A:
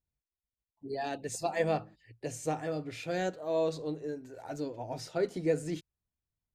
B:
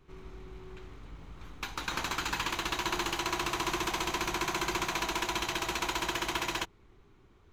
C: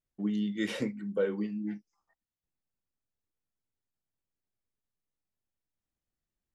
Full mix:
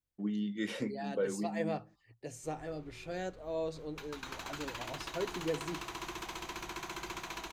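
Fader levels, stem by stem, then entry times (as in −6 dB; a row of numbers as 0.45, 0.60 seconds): −6.5, −10.0, −4.0 decibels; 0.00, 2.35, 0.00 seconds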